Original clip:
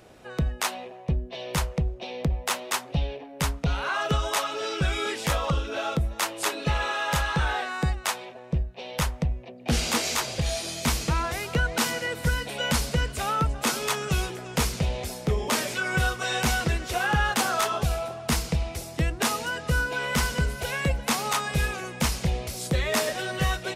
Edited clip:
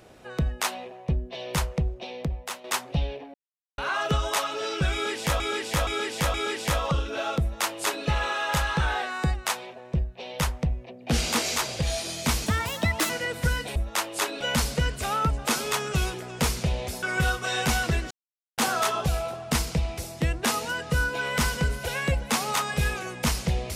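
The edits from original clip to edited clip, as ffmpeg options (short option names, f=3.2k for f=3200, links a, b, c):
-filter_complex "[0:a]asplit=14[a][b][c][d][e][f][g][h][i][j][k][l][m][n];[a]atrim=end=2.64,asetpts=PTS-STARTPTS,afade=t=out:st=1.93:d=0.71:silence=0.281838[o];[b]atrim=start=2.64:end=3.34,asetpts=PTS-STARTPTS,afade=t=in:d=0.004:c=hsin:silence=0.281838,afade=t=out:st=0.696:d=0.004:c=hsin[p];[c]atrim=start=3.34:end=3.78,asetpts=PTS-STARTPTS,volume=0[q];[d]atrim=start=3.78:end=5.402,asetpts=PTS-STARTPTS,afade=t=in:d=0.004:c=hsin[r];[e]atrim=start=4.928:end=5.402[s];[f]atrim=start=4.928:end=5.402[t];[g]atrim=start=4.928:end=11.054[u];[h]atrim=start=11.05:end=11.91,asetpts=PTS-STARTPTS,asetrate=59535,aresample=44100,atrim=end_sample=28093,asetpts=PTS-STARTPTS[v];[i]atrim=start=11.906:end=12.572[w];[j]atrim=start=5.998:end=6.652[x];[k]atrim=start=12.568:end=15.192[y];[l]atrim=start=15.798:end=16.88,asetpts=PTS-STARTPTS,afade=t=out:st=1.078:d=0.004:c=hsin[z];[m]atrim=start=16.88:end=17.35,asetpts=PTS-STARTPTS,volume=0[aa];[n]atrim=start=17.35,asetpts=PTS-STARTPTS,afade=t=in:d=0.004:c=hsin[ab];[o][p][q][r]concat=n=4:v=0:a=1[ac];[ac][s]acrossfade=d=0.004:c1=hsin:c2=hsin[ad];[ad][t]acrossfade=d=0.004:c1=hsin:c2=hsin[ae];[ae][u]acrossfade=d=0.004:c1=hsin:c2=hsin[af];[af][v]acrossfade=d=0.004:c1=hsin:c2=hsin[ag];[ag][w]acrossfade=d=0.004:c1=hsin:c2=hsin[ah];[ah][x]acrossfade=d=0.004:c1=hsin:c2=hsin[ai];[ai][y]acrossfade=d=0.004:c1=hsin:c2=hsin[aj];[z][aa][ab]concat=n=3:v=0:a=1[ak];[aj][ak]acrossfade=d=0.004:c1=hsin:c2=hsin"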